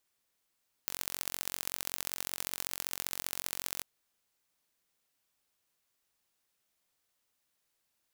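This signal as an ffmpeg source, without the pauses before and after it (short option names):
-f lavfi -i "aevalsrc='0.501*eq(mod(n,974),0)*(0.5+0.5*eq(mod(n,2922),0))':d=2.94:s=44100"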